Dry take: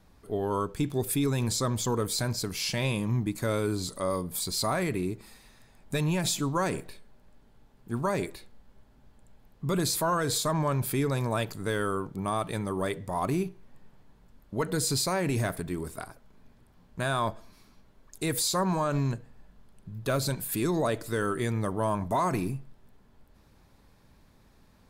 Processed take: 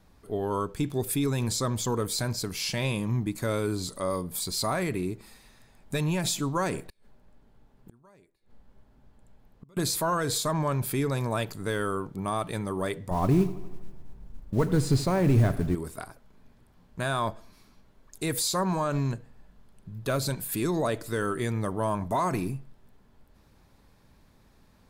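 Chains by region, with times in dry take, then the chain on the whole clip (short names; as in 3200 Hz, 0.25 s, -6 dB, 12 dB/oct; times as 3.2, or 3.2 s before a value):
6.87–9.77 flipped gate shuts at -33 dBFS, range -29 dB + mismatched tape noise reduction decoder only
13.11–15.75 analogue delay 81 ms, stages 2048, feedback 65%, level -17 dB + modulation noise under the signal 14 dB + tilt -3 dB/oct
whole clip: dry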